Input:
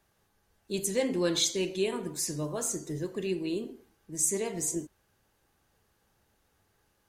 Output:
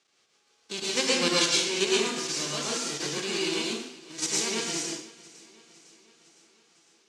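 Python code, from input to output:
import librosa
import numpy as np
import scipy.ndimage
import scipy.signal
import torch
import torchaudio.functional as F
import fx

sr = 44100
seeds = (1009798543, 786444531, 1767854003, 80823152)

p1 = fx.envelope_flatten(x, sr, power=0.3)
p2 = fx.level_steps(p1, sr, step_db=9)
p3 = fx.cabinet(p2, sr, low_hz=280.0, low_slope=12, high_hz=6800.0, hz=(610.0, 930.0, 1700.0), db=(-6, -8, -5))
p4 = p3 + fx.echo_feedback(p3, sr, ms=506, feedback_pct=60, wet_db=-21.5, dry=0)
p5 = fx.rev_plate(p4, sr, seeds[0], rt60_s=0.51, hf_ratio=1.0, predelay_ms=95, drr_db=-3.5)
y = p5 * 10.0 ** (5.5 / 20.0)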